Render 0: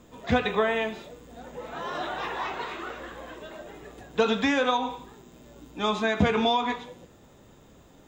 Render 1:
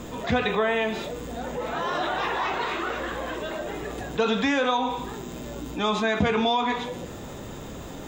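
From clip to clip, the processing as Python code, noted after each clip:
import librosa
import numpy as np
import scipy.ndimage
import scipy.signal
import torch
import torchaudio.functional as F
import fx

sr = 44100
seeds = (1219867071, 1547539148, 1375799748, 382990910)

y = fx.env_flatten(x, sr, amount_pct=50)
y = y * 10.0 ** (-2.0 / 20.0)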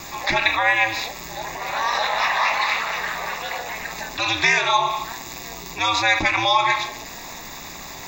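y = fx.fixed_phaser(x, sr, hz=2100.0, stages=8)
y = y * np.sin(2.0 * np.pi * 110.0 * np.arange(len(y)) / sr)
y = fx.tilt_shelf(y, sr, db=-10.0, hz=740.0)
y = y * 10.0 ** (8.5 / 20.0)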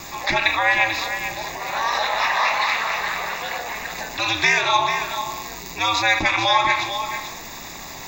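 y = x + 10.0 ** (-9.0 / 20.0) * np.pad(x, (int(442 * sr / 1000.0), 0))[:len(x)]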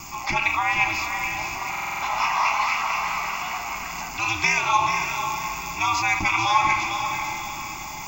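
y = fx.fixed_phaser(x, sr, hz=2600.0, stages=8)
y = fx.echo_diffused(y, sr, ms=541, feedback_pct=45, wet_db=-7.5)
y = fx.buffer_glitch(y, sr, at_s=(1.7,), block=2048, repeats=6)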